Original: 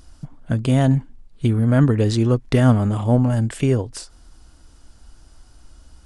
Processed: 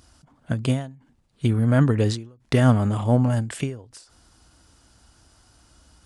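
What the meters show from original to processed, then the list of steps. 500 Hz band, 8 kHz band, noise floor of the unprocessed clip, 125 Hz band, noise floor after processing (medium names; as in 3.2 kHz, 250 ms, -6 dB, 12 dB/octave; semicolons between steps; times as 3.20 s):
-4.0 dB, -3.0 dB, -50 dBFS, -4.0 dB, -62 dBFS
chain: high-pass 86 Hz 12 dB/octave; peaking EQ 300 Hz -3 dB 2.1 oct; endings held to a fixed fall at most 120 dB/s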